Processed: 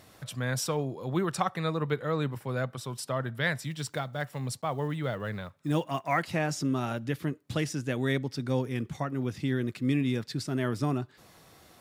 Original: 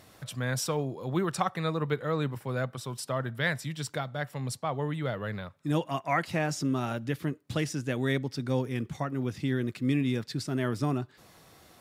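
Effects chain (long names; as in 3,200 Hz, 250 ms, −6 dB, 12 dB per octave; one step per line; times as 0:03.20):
0:03.62–0:06.24: one scale factor per block 7 bits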